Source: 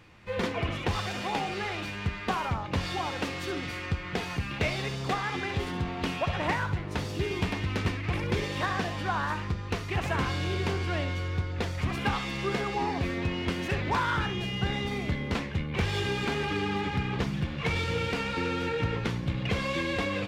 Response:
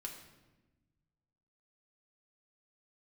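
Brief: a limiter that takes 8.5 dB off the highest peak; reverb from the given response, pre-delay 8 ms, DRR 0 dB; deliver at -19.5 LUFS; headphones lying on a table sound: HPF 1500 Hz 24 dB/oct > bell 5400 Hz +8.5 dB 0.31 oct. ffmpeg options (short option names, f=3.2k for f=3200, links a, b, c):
-filter_complex "[0:a]alimiter=limit=-22.5dB:level=0:latency=1,asplit=2[a][b];[1:a]atrim=start_sample=2205,adelay=8[c];[b][c]afir=irnorm=-1:irlink=0,volume=2.5dB[d];[a][d]amix=inputs=2:normalize=0,highpass=f=1.5k:w=0.5412,highpass=f=1.5k:w=1.3066,equalizer=f=5.4k:t=o:w=0.31:g=8.5,volume=15dB"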